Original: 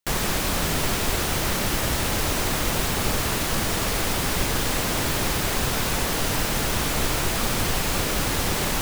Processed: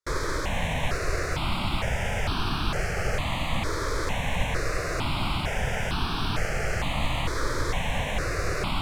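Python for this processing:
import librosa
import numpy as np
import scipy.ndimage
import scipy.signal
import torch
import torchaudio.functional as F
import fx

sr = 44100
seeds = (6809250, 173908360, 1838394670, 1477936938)

y = fx.tracing_dist(x, sr, depth_ms=0.12)
y = scipy.signal.sosfilt(scipy.signal.butter(2, 4800.0, 'lowpass', fs=sr, output='sos'), y)
y = fx.formant_shift(y, sr, semitones=3)
y = fx.phaser_held(y, sr, hz=2.2, low_hz=760.0, high_hz=2000.0)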